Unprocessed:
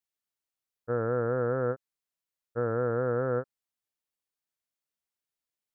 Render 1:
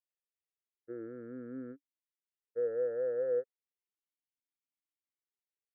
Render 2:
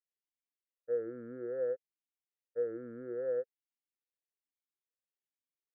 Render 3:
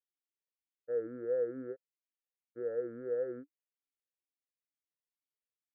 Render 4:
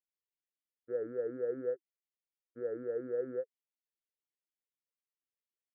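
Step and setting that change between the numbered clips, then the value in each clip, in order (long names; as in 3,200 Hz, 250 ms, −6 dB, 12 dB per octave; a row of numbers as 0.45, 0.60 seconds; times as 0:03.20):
formant filter swept between two vowels, speed: 0.33, 1.2, 2.2, 4.1 Hertz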